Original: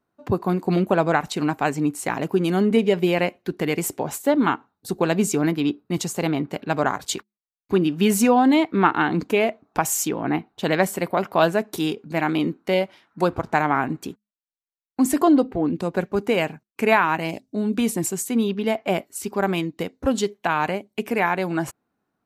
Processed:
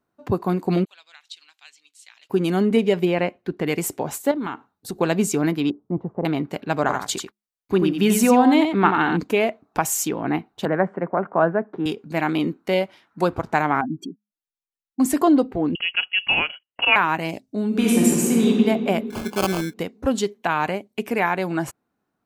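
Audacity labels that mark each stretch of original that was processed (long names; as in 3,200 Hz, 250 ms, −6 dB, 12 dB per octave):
0.850000	2.300000	four-pole ladder band-pass 4,200 Hz, resonance 45%
3.050000	3.670000	low-pass filter 2,400 Hz 6 dB per octave
4.310000	5.010000	downward compressor, threshold −24 dBFS
5.700000	6.250000	low-pass filter 1,000 Hz 24 dB per octave
6.800000	9.170000	single-tap delay 89 ms −6 dB
10.650000	11.860000	Chebyshev band-pass filter 150–1,600 Hz, order 3
13.810000	15.000000	expanding power law on the bin magnitudes exponent 2.8
15.750000	16.960000	voice inversion scrambler carrier 3,100 Hz
17.670000	18.470000	thrown reverb, RT60 2.3 s, DRR −4.5 dB
19.100000	19.740000	sample-rate reduction 1,900 Hz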